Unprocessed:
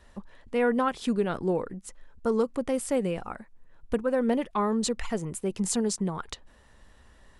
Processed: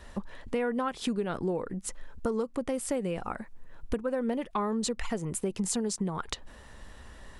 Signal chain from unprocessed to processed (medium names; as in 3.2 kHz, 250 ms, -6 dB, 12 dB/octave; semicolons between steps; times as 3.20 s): compression 4:1, threshold -37 dBFS, peak gain reduction 14 dB; trim +7.5 dB